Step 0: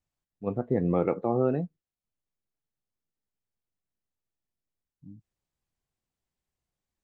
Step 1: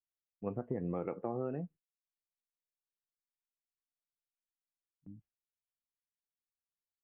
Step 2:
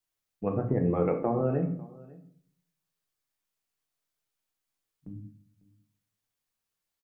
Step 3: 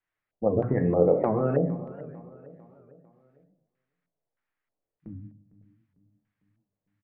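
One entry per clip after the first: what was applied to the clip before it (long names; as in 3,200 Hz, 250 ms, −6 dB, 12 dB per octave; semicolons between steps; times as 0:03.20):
noise gate with hold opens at −41 dBFS; downward compressor, threshold −29 dBFS, peak gain reduction 9.5 dB; elliptic low-pass filter 3,000 Hz; level −3 dB
single-tap delay 549 ms −22.5 dB; rectangular room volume 68 cubic metres, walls mixed, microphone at 0.52 metres; level +8.5 dB
auto-filter low-pass square 1.6 Hz 610–1,900 Hz; repeating echo 450 ms, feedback 48%, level −18.5 dB; wow of a warped record 78 rpm, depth 160 cents; level +1.5 dB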